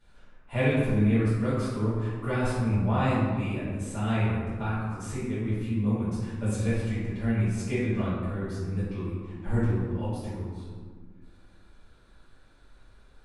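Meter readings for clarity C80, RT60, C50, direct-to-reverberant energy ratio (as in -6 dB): 1.0 dB, 1.7 s, -2.0 dB, -12.5 dB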